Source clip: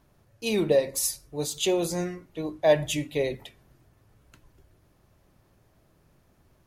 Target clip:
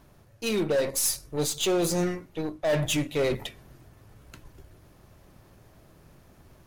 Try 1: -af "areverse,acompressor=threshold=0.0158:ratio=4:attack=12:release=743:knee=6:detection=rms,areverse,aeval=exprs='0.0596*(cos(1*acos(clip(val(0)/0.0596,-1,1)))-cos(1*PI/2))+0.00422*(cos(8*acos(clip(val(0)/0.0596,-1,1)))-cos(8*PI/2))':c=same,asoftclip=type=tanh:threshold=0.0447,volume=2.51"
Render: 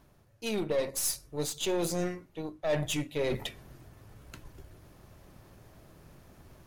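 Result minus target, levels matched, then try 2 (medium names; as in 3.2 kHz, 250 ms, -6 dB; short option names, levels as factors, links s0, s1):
compression: peak gain reduction +7.5 dB
-af "areverse,acompressor=threshold=0.0501:ratio=4:attack=12:release=743:knee=6:detection=rms,areverse,aeval=exprs='0.0596*(cos(1*acos(clip(val(0)/0.0596,-1,1)))-cos(1*PI/2))+0.00422*(cos(8*acos(clip(val(0)/0.0596,-1,1)))-cos(8*PI/2))':c=same,asoftclip=type=tanh:threshold=0.0447,volume=2.51"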